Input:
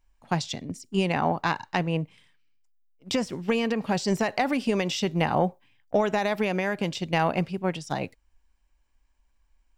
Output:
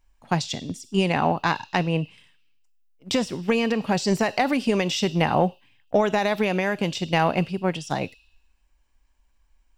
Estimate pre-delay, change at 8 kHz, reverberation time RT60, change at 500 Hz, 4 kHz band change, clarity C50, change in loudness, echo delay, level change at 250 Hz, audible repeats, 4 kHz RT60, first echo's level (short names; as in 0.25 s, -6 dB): 4 ms, +3.5 dB, 1.1 s, +3.0 dB, +4.0 dB, 15.0 dB, +3.0 dB, none, +3.0 dB, none, 0.80 s, none